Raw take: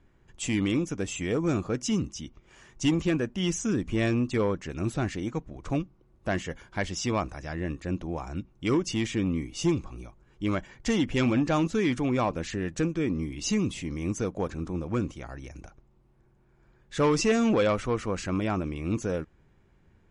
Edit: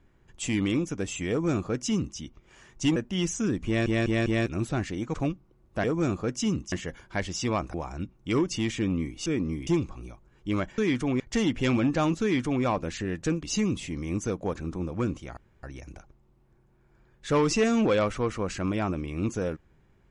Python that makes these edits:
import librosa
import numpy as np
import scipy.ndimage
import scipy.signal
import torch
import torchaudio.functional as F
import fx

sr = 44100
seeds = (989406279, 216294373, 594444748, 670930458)

y = fx.edit(x, sr, fx.duplicate(start_s=1.3, length_s=0.88, to_s=6.34),
    fx.cut(start_s=2.96, length_s=0.25),
    fx.stutter_over(start_s=3.91, slice_s=0.2, count=4),
    fx.cut(start_s=5.39, length_s=0.25),
    fx.cut(start_s=7.36, length_s=0.74),
    fx.duplicate(start_s=11.75, length_s=0.42, to_s=10.73),
    fx.move(start_s=12.96, length_s=0.41, to_s=9.62),
    fx.insert_room_tone(at_s=15.31, length_s=0.26), tone=tone)